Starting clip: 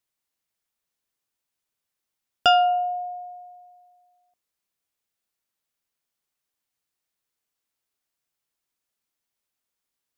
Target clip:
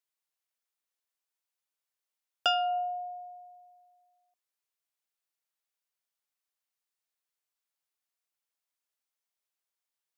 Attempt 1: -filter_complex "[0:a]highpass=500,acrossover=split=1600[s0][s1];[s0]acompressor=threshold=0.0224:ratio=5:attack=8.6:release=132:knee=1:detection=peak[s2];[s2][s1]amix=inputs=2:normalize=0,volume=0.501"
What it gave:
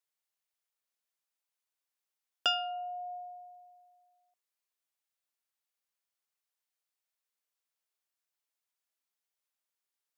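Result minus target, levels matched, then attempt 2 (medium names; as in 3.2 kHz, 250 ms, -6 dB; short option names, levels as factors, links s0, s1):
compression: peak gain reduction +9 dB
-filter_complex "[0:a]highpass=500,acrossover=split=1600[s0][s1];[s0]acompressor=threshold=0.0794:ratio=5:attack=8.6:release=132:knee=1:detection=peak[s2];[s2][s1]amix=inputs=2:normalize=0,volume=0.501"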